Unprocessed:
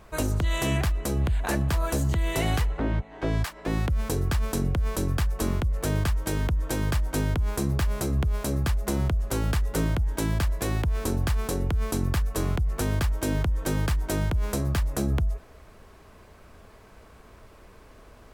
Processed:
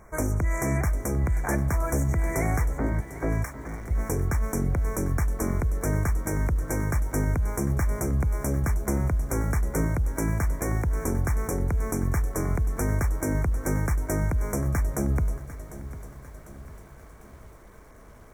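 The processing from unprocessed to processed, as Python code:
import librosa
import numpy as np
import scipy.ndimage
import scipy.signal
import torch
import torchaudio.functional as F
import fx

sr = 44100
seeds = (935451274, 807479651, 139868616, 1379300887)

y = fx.overload_stage(x, sr, gain_db=36.0, at=(3.45, 3.91))
y = fx.brickwall_bandstop(y, sr, low_hz=2400.0, high_hz=5400.0)
y = fx.echo_crushed(y, sr, ms=749, feedback_pct=55, bits=8, wet_db=-14.5)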